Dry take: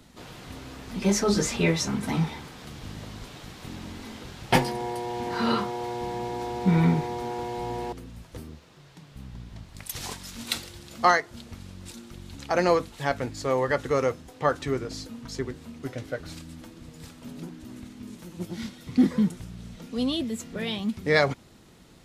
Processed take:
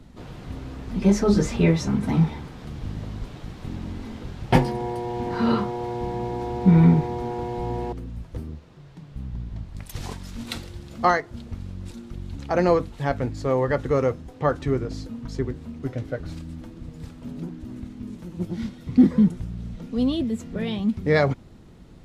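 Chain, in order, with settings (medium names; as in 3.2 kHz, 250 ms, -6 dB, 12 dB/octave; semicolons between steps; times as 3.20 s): tilt EQ -2.5 dB/octave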